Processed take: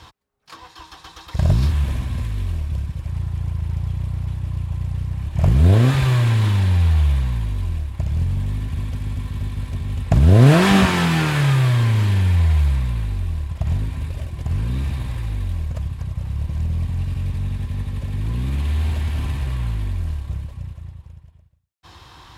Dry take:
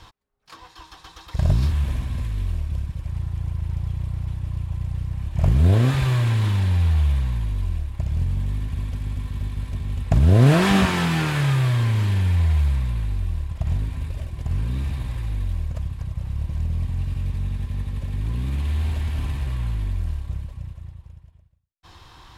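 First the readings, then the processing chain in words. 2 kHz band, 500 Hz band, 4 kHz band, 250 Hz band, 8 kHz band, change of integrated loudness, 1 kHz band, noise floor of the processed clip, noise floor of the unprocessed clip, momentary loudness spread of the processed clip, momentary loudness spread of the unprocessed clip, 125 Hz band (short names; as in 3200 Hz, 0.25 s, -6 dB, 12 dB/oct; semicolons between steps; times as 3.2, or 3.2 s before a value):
+3.5 dB, +3.5 dB, +3.5 dB, +3.5 dB, +3.5 dB, +3.0 dB, +3.5 dB, -47 dBFS, -50 dBFS, 12 LU, 11 LU, +3.0 dB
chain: HPF 52 Hz; gain +3.5 dB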